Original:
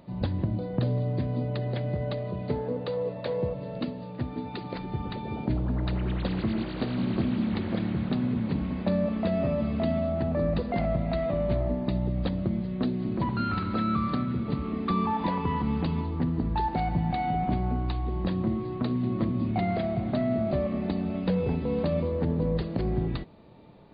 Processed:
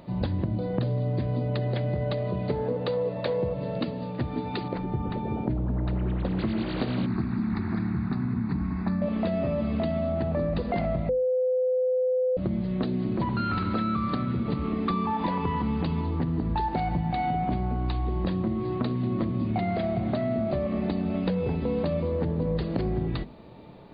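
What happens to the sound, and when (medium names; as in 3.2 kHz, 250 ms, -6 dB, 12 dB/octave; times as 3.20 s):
4.68–6.39 s: low-pass 1.1 kHz 6 dB/octave
7.06–9.02 s: static phaser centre 1.3 kHz, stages 4
11.09–12.37 s: bleep 509 Hz -20 dBFS
whole clip: hum notches 50/100/150/200/250 Hz; compression, threshold -29 dBFS; trim +5.5 dB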